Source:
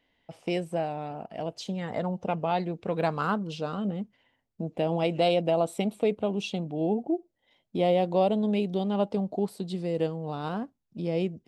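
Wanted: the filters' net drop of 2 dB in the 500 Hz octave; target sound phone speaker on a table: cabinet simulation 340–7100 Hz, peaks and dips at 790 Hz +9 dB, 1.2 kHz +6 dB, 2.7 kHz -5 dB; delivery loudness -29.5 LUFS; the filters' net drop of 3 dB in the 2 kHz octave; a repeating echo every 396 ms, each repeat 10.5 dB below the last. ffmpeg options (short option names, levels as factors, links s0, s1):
-af "highpass=f=340:w=0.5412,highpass=f=340:w=1.3066,equalizer=f=790:t=q:w=4:g=9,equalizer=f=1200:t=q:w=4:g=6,equalizer=f=2700:t=q:w=4:g=-5,lowpass=f=7100:w=0.5412,lowpass=f=7100:w=1.3066,equalizer=f=500:t=o:g=-4,equalizer=f=2000:t=o:g=-3.5,aecho=1:1:396|792|1188:0.299|0.0896|0.0269,volume=1.12"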